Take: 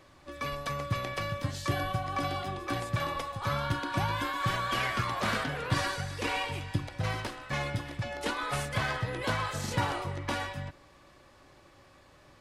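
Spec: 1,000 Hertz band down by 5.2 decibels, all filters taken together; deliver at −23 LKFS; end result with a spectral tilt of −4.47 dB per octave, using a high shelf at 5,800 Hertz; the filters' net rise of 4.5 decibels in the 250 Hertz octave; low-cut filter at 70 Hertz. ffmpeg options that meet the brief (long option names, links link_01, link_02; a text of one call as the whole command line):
ffmpeg -i in.wav -af "highpass=70,equalizer=frequency=250:width_type=o:gain=6.5,equalizer=frequency=1000:width_type=o:gain=-7,highshelf=frequency=5800:gain=7.5,volume=9.5dB" out.wav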